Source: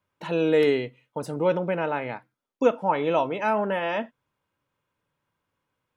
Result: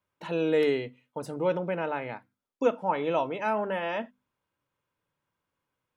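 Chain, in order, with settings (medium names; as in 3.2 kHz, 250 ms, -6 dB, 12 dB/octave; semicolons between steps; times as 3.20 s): hum notches 50/100/150/200/250 Hz; trim -4 dB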